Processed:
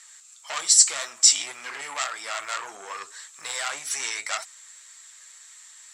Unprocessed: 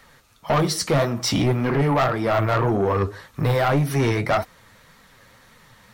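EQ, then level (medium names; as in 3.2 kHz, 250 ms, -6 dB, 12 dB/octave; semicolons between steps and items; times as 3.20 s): high-pass 1.5 kHz 12 dB/octave; resonant low-pass 7.6 kHz, resonance Q 14; treble shelf 3.5 kHz +8 dB; -4.0 dB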